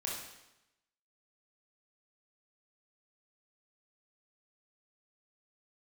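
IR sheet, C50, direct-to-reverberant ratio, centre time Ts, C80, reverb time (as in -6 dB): 1.0 dB, -4.0 dB, 59 ms, 5.0 dB, 0.90 s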